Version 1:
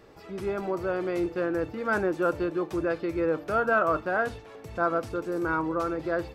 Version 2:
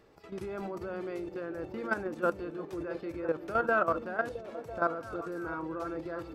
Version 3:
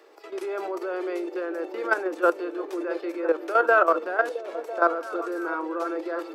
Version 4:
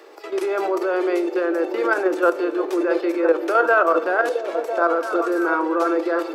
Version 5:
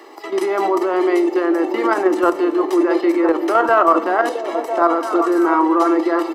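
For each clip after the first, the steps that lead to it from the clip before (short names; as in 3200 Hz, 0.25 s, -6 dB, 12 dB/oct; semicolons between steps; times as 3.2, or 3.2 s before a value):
level quantiser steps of 12 dB; delay with a stepping band-pass 0.333 s, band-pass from 240 Hz, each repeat 0.7 oct, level -6 dB; gain -1.5 dB
steep high-pass 320 Hz 48 dB/oct; gain +8.5 dB
limiter -16 dBFS, peak gain reduction 8.5 dB; on a send at -15 dB: reverb RT60 1.1 s, pre-delay 3 ms; on the sum: gain +8.5 dB
low shelf 340 Hz +10.5 dB; comb 1 ms, depth 66%; gain +3 dB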